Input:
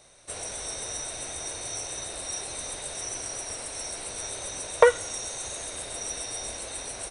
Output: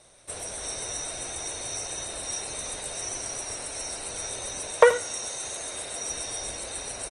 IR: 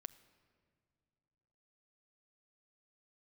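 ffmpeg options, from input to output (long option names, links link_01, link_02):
-filter_complex "[0:a]asettb=1/sr,asplit=3[link_01][link_02][link_03];[link_01]atrim=end=4.724[link_04];[link_02]atrim=start=4.72:end=6.09,asetpts=PTS-STARTPTS,afade=type=in:duration=0.004:curve=qsin,afade=type=out:start_time=1.366:duration=0.004:curve=qsin,lowshelf=frequency=93:gain=-10.5[link_05];[link_03]atrim=start=6.086[link_06];[link_04][link_05]acrossfade=duration=0.004:curve1=hsin:curve2=qsin[link_07];[link_07][link_06]acrossfade=duration=0.004:curve1=qsin:curve2=hsin,asplit=2[link_08][link_09];[link_09]adelay=80,highpass=300,lowpass=3400,asoftclip=type=hard:threshold=-10.5dB,volume=-12dB[link_10];[link_08][link_10]amix=inputs=2:normalize=0,volume=1dB" -ar 48000 -c:a libopus -b:a 24k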